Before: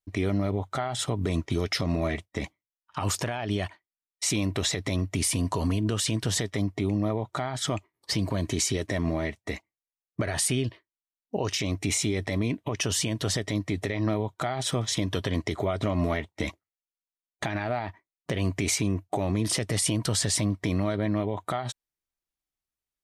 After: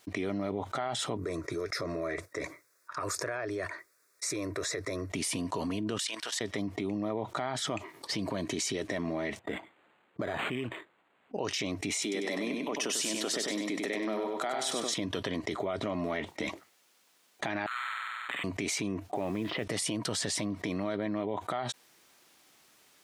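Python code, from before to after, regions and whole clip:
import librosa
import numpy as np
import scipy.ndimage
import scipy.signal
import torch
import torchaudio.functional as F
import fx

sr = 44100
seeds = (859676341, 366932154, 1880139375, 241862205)

y = fx.chain(x, sr, fx.highpass(hz=57.0, slope=12),
    fx.fixed_phaser(hz=820.0, stages=6), at=(1.17, 5.1))
y = fx.chain(y, sr, fx.highpass(hz=1000.0, slope=12),
    fx.level_steps(step_db=15), at=(5.98, 6.41))
y = fx.chain(y, sr, fx.harmonic_tremolo(hz=1.2, depth_pct=50, crossover_hz=1800.0),
    fx.resample_linear(factor=8), at=(9.39, 11.39))
y = fx.chain(y, sr, fx.highpass(hz=210.0, slope=24),
    fx.high_shelf(hz=6700.0, db=9.0),
    fx.echo_feedback(ms=97, feedback_pct=36, wet_db=-5), at=(12.02, 14.94))
y = fx.chain(y, sr, fx.steep_highpass(hz=1100.0, slope=72),
    fx.room_flutter(wall_m=8.1, rt60_s=1.5),
    fx.resample_linear(factor=8), at=(17.66, 18.44))
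y = fx.chain(y, sr, fx.steep_lowpass(hz=3300.0, slope=36),
    fx.mod_noise(seeds[0], snr_db=28), at=(19.14, 19.64))
y = scipy.signal.sosfilt(scipy.signal.butter(2, 210.0, 'highpass', fs=sr, output='sos'), y)
y = fx.high_shelf(y, sr, hz=10000.0, db=-10.0)
y = fx.env_flatten(y, sr, amount_pct=70)
y = y * librosa.db_to_amplitude(-7.0)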